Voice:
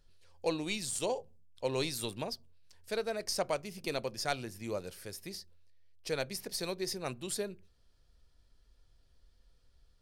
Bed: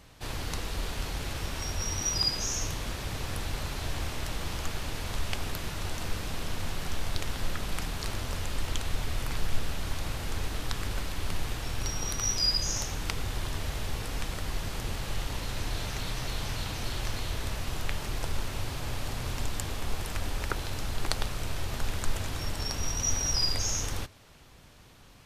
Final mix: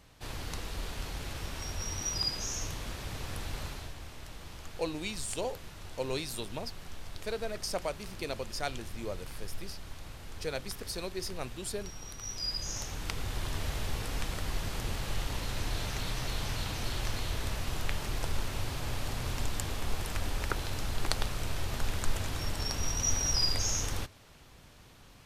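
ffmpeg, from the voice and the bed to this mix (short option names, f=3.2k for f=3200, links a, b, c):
-filter_complex "[0:a]adelay=4350,volume=-1.5dB[a];[1:a]volume=6.5dB,afade=t=out:st=3.65:d=0.29:silence=0.421697,afade=t=in:st=12.21:d=1.42:silence=0.281838[b];[a][b]amix=inputs=2:normalize=0"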